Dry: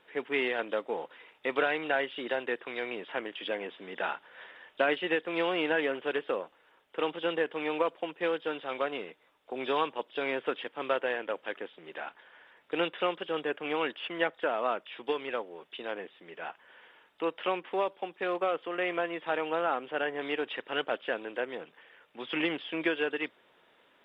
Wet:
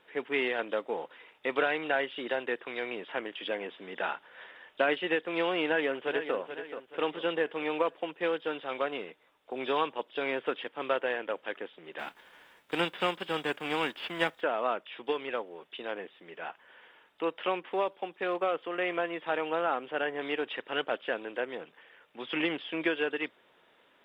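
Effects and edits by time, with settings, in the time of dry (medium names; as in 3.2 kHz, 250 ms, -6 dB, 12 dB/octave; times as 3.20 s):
5.64–6.36 s: echo throw 430 ms, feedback 45%, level -9.5 dB
11.98–14.40 s: formants flattened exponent 0.6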